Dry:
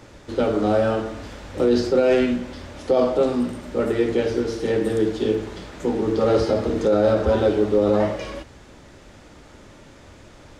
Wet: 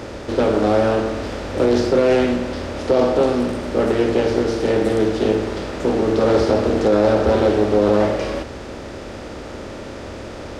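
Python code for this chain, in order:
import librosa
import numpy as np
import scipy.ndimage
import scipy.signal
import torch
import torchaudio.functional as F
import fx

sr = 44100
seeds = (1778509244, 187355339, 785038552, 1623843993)

y = fx.bin_compress(x, sr, power=0.6)
y = fx.doppler_dist(y, sr, depth_ms=0.25)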